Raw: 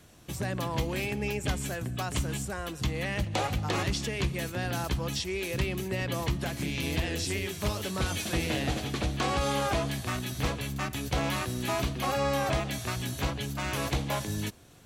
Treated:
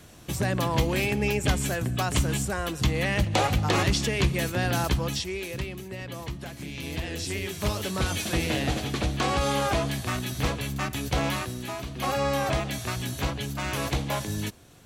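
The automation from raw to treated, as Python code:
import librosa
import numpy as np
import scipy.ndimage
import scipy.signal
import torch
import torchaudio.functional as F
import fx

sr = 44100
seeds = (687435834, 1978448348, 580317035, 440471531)

y = fx.gain(x, sr, db=fx.line((4.87, 6.0), (5.81, -5.5), (6.6, -5.5), (7.69, 3.0), (11.27, 3.0), (11.85, -6.5), (12.04, 2.0)))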